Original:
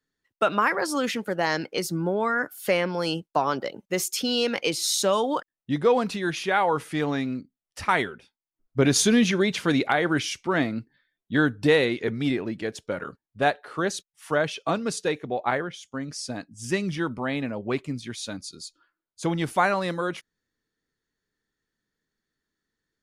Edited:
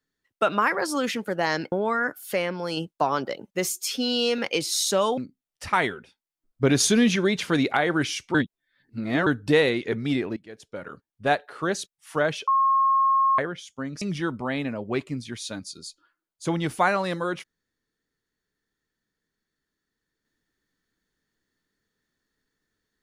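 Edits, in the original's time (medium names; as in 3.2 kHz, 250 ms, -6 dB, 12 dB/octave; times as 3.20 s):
1.72–2.07 s: delete
2.68–3.12 s: gain -3 dB
4.03–4.50 s: stretch 1.5×
5.29–7.33 s: delete
10.50–11.42 s: reverse
12.52–13.47 s: fade in, from -20 dB
14.63–15.54 s: bleep 1.08 kHz -17 dBFS
16.17–16.79 s: delete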